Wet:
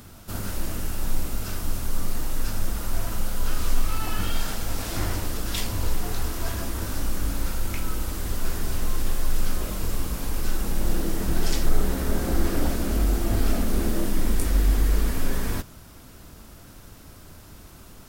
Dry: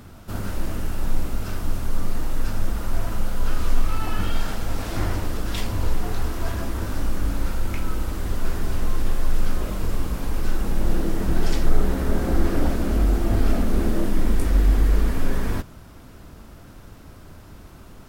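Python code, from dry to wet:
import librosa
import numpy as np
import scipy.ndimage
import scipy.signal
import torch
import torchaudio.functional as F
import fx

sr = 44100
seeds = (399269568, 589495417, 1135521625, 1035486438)

y = fx.high_shelf(x, sr, hz=3600.0, db=10.5)
y = y * librosa.db_to_amplitude(-3.0)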